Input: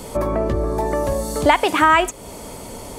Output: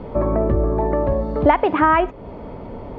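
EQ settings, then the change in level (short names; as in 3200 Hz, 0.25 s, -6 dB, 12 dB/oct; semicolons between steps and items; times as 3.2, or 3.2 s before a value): air absorption 270 m; tape spacing loss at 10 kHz 37 dB; +4.0 dB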